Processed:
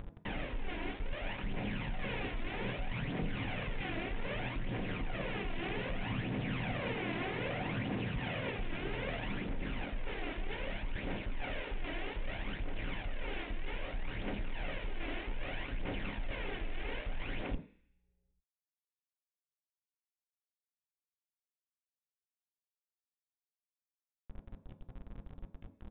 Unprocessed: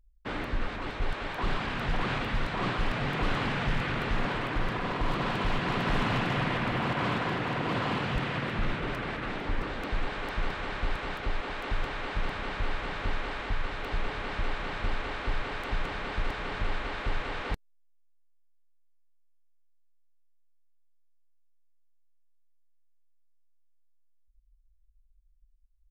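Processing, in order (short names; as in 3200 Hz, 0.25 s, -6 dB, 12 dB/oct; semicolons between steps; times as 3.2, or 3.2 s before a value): minimum comb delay 0.41 ms; phaser 0.63 Hz, delay 3.1 ms, feedback 56%; limiter -22 dBFS, peak gain reduction 9 dB; reverse; compressor 16:1, threshold -40 dBFS, peak gain reduction 16 dB; reverse; sample leveller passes 1; upward compressor, threshold -40 dBFS; sample gate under -45 dBFS; low-pass opened by the level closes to 2900 Hz; on a send at -7 dB: reverb RT60 0.50 s, pre-delay 3 ms; on the sum: downsampling 8000 Hz; gain +2 dB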